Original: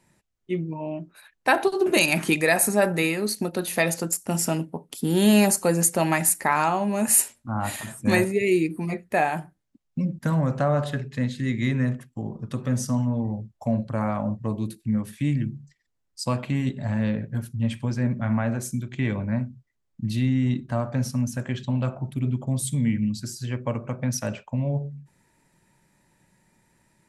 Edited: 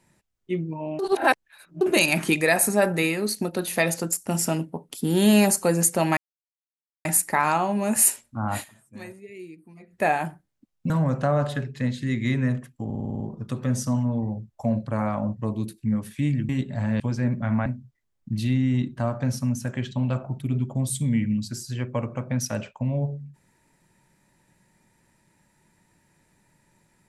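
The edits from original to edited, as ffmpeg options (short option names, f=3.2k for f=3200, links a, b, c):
-filter_complex "[0:a]asplit=17[a][b][c][d][e][f][g][h][i][j][k][l][m][n][o][p][q];[a]atrim=end=0.992[r];[b]atrim=start=0.988:end=1.812,asetpts=PTS-STARTPTS,areverse[s];[c]atrim=start=1.808:end=6.17,asetpts=PTS-STARTPTS,afade=t=out:st=4.358:d=0.004:c=hsin,apad=pad_dur=0.88[t];[d]atrim=start=6.17:end=8,asetpts=PTS-STARTPTS,afade=t=in:d=0.004:c=hsin,afade=t=out:st=1.55:d=0.28:c=exp:silence=0.1[u];[e]atrim=start=8:end=8.77,asetpts=PTS-STARTPTS,volume=-20dB[v];[f]atrim=start=8.77:end=10.022,asetpts=PTS-STARTPTS,afade=t=in:d=0.28:c=exp:silence=0.1[w];[g]atrim=start=10.268:end=12.272[x];[h]atrim=start=12.218:end=12.272[y];[i]atrim=start=12.218:end=12.272[z];[j]atrim=start=12.218:end=12.272[aa];[k]atrim=start=12.218:end=12.272[ab];[l]atrim=start=12.218:end=12.272[ac];[m]atrim=start=12.218:end=12.272[ad];[n]atrim=start=12.218:end=15.512[ae];[o]atrim=start=16.568:end=17.082[af];[p]atrim=start=17.788:end=18.452[ag];[q]atrim=start=19.378[ah];[r][s]acrossfade=d=0.004:c1=hsin:c2=hsin[ai];[t][u][v][w]concat=n=4:v=0:a=1[aj];[ai][aj]acrossfade=d=0.004:c1=hsin:c2=hsin[ak];[ak][x]acrossfade=d=0.004:c1=hsin:c2=hsin[al];[al][y]acrossfade=d=0.004:c1=hsin:c2=hsin[am];[am][z]acrossfade=d=0.004:c1=hsin:c2=hsin[an];[an][aa]acrossfade=d=0.004:c1=hsin:c2=hsin[ao];[ao][ab]acrossfade=d=0.004:c1=hsin:c2=hsin[ap];[ap][ac]acrossfade=d=0.004:c1=hsin:c2=hsin[aq];[aq][ad]acrossfade=d=0.004:c1=hsin:c2=hsin[ar];[ar][ae]acrossfade=d=0.004:c1=hsin:c2=hsin[as];[as][af]acrossfade=d=0.004:c1=hsin:c2=hsin[at];[at][ag]acrossfade=d=0.004:c1=hsin:c2=hsin[au];[au][ah]acrossfade=d=0.004:c1=hsin:c2=hsin"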